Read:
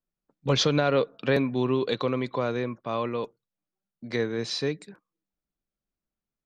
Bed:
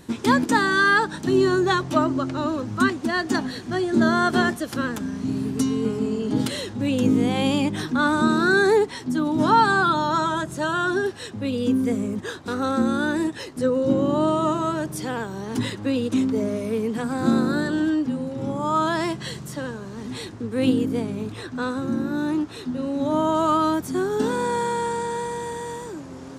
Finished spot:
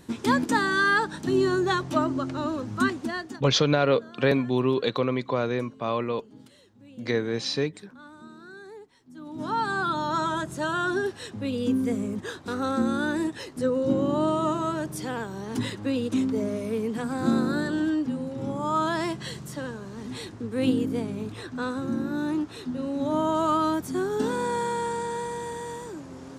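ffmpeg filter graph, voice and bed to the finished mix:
-filter_complex "[0:a]adelay=2950,volume=1.5dB[a];[1:a]volume=19.5dB,afade=t=out:st=2.98:d=0.43:silence=0.0707946,afade=t=in:st=9.08:d=1.22:silence=0.0668344[b];[a][b]amix=inputs=2:normalize=0"

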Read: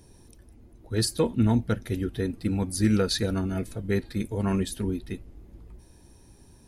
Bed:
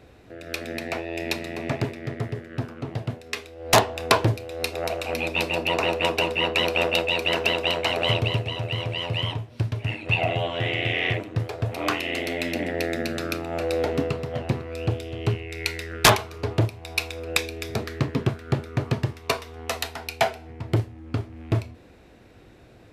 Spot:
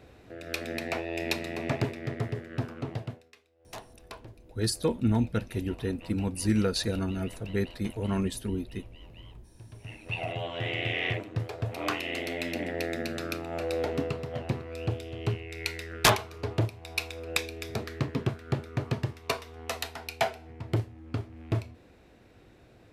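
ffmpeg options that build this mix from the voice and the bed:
-filter_complex "[0:a]adelay=3650,volume=-3dB[a];[1:a]volume=18.5dB,afade=t=out:st=2.85:d=0.47:silence=0.0630957,afade=t=in:st=9.59:d=1.2:silence=0.0891251[b];[a][b]amix=inputs=2:normalize=0"

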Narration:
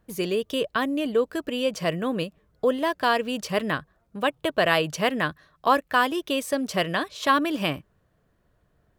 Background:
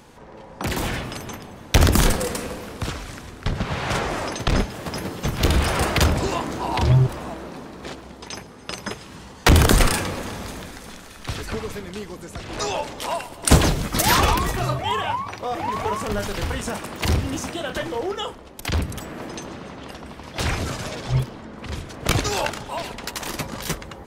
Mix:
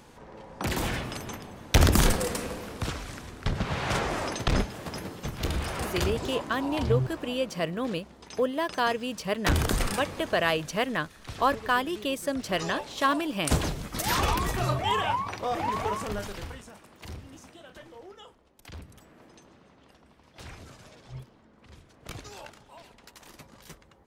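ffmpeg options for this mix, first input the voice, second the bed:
-filter_complex "[0:a]adelay=5750,volume=-4dB[a];[1:a]volume=4.5dB,afade=t=out:st=4.38:d=0.99:silence=0.446684,afade=t=in:st=14.02:d=0.78:silence=0.375837,afade=t=out:st=15.6:d=1.08:silence=0.125893[b];[a][b]amix=inputs=2:normalize=0"

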